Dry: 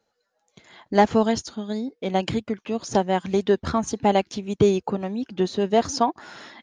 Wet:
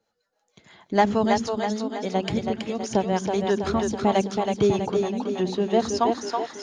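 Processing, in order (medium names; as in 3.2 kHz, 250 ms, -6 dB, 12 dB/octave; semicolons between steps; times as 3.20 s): two-band feedback delay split 310 Hz, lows 86 ms, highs 325 ms, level -4 dB; harmonic tremolo 6.4 Hz, depth 50%, crossover 610 Hz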